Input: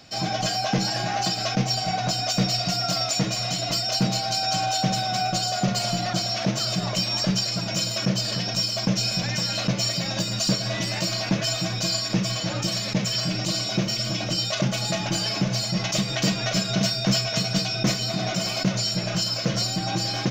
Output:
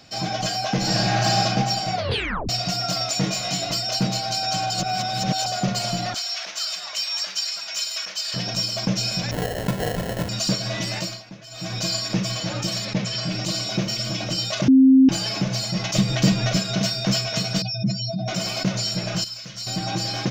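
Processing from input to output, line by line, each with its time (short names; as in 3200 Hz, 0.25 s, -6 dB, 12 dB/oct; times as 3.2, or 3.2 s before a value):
0.76–1.39 reverb throw, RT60 2.2 s, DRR -3.5 dB
1.94 tape stop 0.55 s
3.21–3.67 doubler 21 ms -3 dB
4.7–5.46 reverse
6.14–8.34 HPF 1300 Hz
9.31–10.29 sample-rate reducer 1200 Hz
10.96–11.77 dip -17.5 dB, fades 0.27 s
12.85–13.32 Bessel low-pass 5700 Hz
14.68–15.09 bleep 264 Hz -9 dBFS
15.95–16.57 low shelf 270 Hz +9.5 dB
17.62–18.28 spectral contrast raised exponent 2.4
19.24–19.67 passive tone stack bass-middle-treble 5-5-5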